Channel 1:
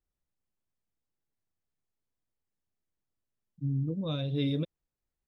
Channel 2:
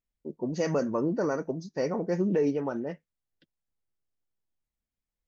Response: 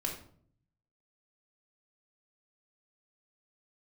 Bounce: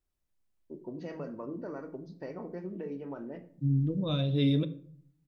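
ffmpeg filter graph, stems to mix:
-filter_complex "[0:a]volume=1,asplit=2[s0][s1];[s1]volume=0.335[s2];[1:a]acompressor=threshold=0.0224:ratio=3,lowpass=f=4100:w=0.5412,lowpass=f=4100:w=1.3066,adelay=450,volume=0.335,asplit=2[s3][s4];[s4]volume=0.562[s5];[2:a]atrim=start_sample=2205[s6];[s2][s5]amix=inputs=2:normalize=0[s7];[s7][s6]afir=irnorm=-1:irlink=0[s8];[s0][s3][s8]amix=inputs=3:normalize=0"

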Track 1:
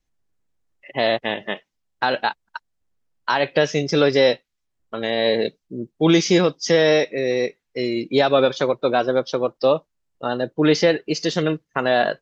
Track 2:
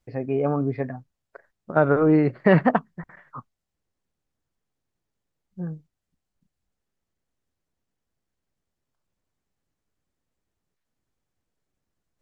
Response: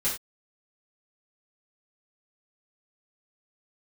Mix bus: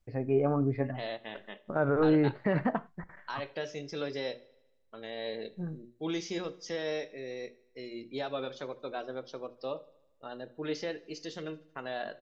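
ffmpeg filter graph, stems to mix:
-filter_complex "[0:a]bandreject=f=60:t=h:w=6,bandreject=f=120:t=h:w=6,bandreject=f=180:t=h:w=6,bandreject=f=240:t=h:w=6,bandreject=f=300:t=h:w=6,bandreject=f=360:t=h:w=6,bandreject=f=420:t=h:w=6,bandreject=f=480:t=h:w=6,bandreject=f=540:t=h:w=6,bandreject=f=600:t=h:w=6,volume=0.112,asplit=3[s0][s1][s2];[s1]volume=0.0794[s3];[s2]volume=0.0708[s4];[1:a]lowshelf=f=63:g=9,flanger=delay=1.6:depth=2:regen=90:speed=0.6:shape=triangular,alimiter=limit=0.141:level=0:latency=1:release=91,volume=0.944,asplit=2[s5][s6];[s6]volume=0.0794[s7];[2:a]atrim=start_sample=2205[s8];[s3][s7]amix=inputs=2:normalize=0[s9];[s9][s8]afir=irnorm=-1:irlink=0[s10];[s4]aecho=0:1:77|154|231|308|385|462|539|616|693:1|0.59|0.348|0.205|0.121|0.0715|0.0422|0.0249|0.0147[s11];[s0][s5][s10][s11]amix=inputs=4:normalize=0"

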